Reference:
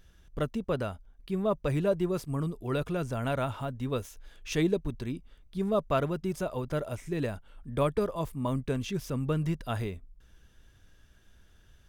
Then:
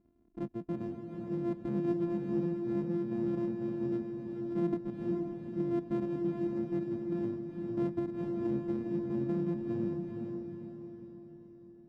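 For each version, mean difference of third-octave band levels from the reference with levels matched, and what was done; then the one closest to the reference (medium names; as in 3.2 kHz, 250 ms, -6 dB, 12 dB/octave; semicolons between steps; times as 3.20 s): 11.5 dB: sorted samples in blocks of 128 samples; band-pass filter 230 Hz, Q 1.9; on a send: echo that smears into a reverb 464 ms, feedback 49%, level -3.5 dB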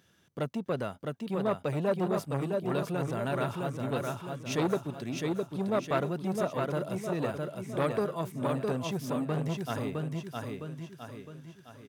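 6.5 dB: high-pass 120 Hz 24 dB/octave; on a send: feedback delay 660 ms, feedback 45%, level -4 dB; on the sum: transformer saturation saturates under 880 Hz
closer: second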